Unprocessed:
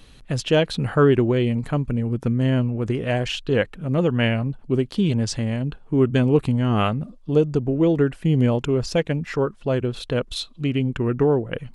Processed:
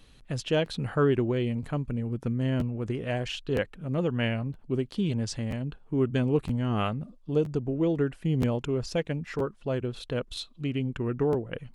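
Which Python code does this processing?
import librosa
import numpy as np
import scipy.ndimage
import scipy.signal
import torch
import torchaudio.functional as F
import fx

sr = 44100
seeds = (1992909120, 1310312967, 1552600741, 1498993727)

y = fx.buffer_crackle(x, sr, first_s=0.65, period_s=0.97, block=512, kind='repeat')
y = y * 10.0 ** (-7.5 / 20.0)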